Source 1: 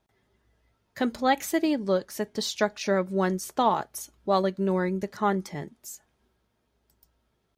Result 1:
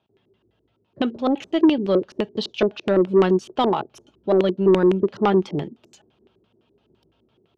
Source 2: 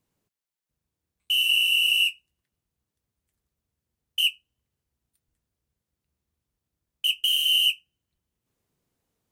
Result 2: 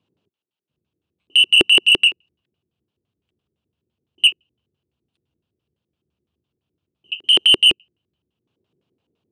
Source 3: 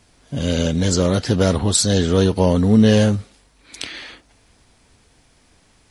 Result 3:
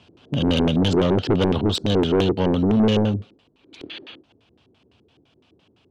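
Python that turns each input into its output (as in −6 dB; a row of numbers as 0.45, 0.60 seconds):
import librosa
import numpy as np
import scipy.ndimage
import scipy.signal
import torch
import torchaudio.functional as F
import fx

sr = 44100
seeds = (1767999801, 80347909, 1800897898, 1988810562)

y = scipy.signal.sosfilt(scipy.signal.butter(4, 83.0, 'highpass', fs=sr, output='sos'), x)
y = fx.peak_eq(y, sr, hz=2000.0, db=-12.5, octaves=0.66)
y = fx.rider(y, sr, range_db=4, speed_s=2.0)
y = fx.filter_lfo_lowpass(y, sr, shape='square', hz=5.9, low_hz=370.0, high_hz=2900.0, q=3.8)
y = 10.0 ** (-12.5 / 20.0) * np.tanh(y / 10.0 ** (-12.5 / 20.0))
y = y * 10.0 ** (-22 / 20.0) / np.sqrt(np.mean(np.square(y)))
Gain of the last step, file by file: +5.0, +7.5, −0.5 decibels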